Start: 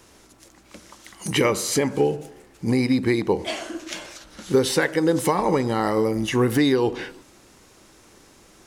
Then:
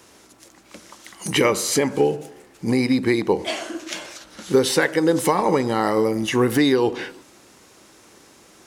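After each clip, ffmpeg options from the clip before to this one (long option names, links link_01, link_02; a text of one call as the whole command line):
ffmpeg -i in.wav -af "highpass=frequency=160:poles=1,volume=2.5dB" out.wav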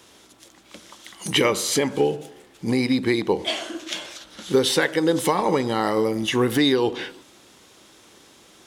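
ffmpeg -i in.wav -af "equalizer=frequency=3400:width_type=o:width=0.45:gain=8,volume=-2dB" out.wav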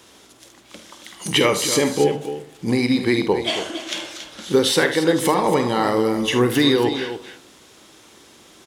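ffmpeg -i in.wav -af "aecho=1:1:49|75|276:0.282|0.224|0.299,volume=2dB" out.wav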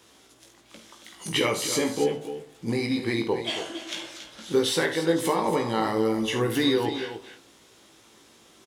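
ffmpeg -i in.wav -filter_complex "[0:a]asplit=2[link_01][link_02];[link_02]adelay=18,volume=-4.5dB[link_03];[link_01][link_03]amix=inputs=2:normalize=0,volume=-8dB" out.wav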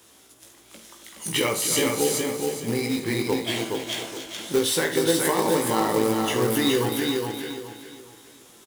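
ffmpeg -i in.wav -filter_complex "[0:a]aecho=1:1:419|838|1257|1676:0.668|0.207|0.0642|0.0199,acrossover=split=6500[link_01][link_02];[link_02]crystalizer=i=1.5:c=0[link_03];[link_01][link_03]amix=inputs=2:normalize=0,acrusher=bits=3:mode=log:mix=0:aa=0.000001" out.wav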